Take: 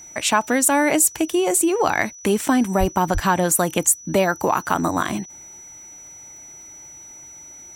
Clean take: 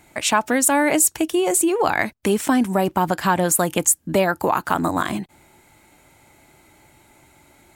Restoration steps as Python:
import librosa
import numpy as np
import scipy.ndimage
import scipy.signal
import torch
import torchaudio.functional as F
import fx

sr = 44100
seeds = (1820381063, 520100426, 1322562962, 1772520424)

y = fx.fix_declick_ar(x, sr, threshold=6.5)
y = fx.notch(y, sr, hz=5900.0, q=30.0)
y = fx.highpass(y, sr, hz=140.0, slope=24, at=(2.79, 2.91), fade=0.02)
y = fx.highpass(y, sr, hz=140.0, slope=24, at=(3.13, 3.25), fade=0.02)